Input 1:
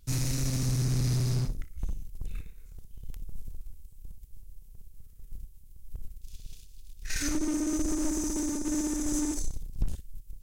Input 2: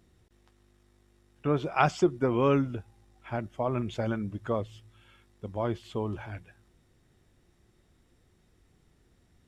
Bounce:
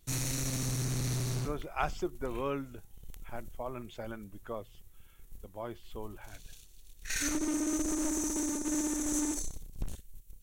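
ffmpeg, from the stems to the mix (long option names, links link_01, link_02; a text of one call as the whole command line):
ffmpeg -i stem1.wav -i stem2.wav -filter_complex "[0:a]bandreject=frequency=5000:width=6.8,volume=1dB[link_01];[1:a]volume=-8dB[link_02];[link_01][link_02]amix=inputs=2:normalize=0,lowshelf=frequency=240:gain=-9.5" out.wav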